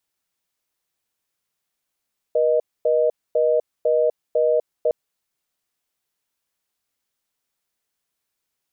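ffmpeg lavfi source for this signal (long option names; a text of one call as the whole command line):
ffmpeg -f lavfi -i "aevalsrc='0.126*(sin(2*PI*480*t)+sin(2*PI*620*t))*clip(min(mod(t,0.5),0.25-mod(t,0.5))/0.005,0,1)':duration=2.56:sample_rate=44100" out.wav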